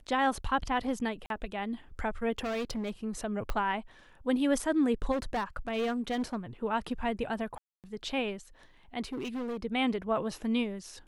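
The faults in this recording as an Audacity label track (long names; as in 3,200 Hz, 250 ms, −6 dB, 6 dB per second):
1.260000	1.300000	drop-out 42 ms
2.380000	2.910000	clipping −30 dBFS
3.500000	3.500000	click −19 dBFS
5.110000	6.360000	clipping −27 dBFS
7.580000	7.840000	drop-out 258 ms
9.040000	9.570000	clipping −32 dBFS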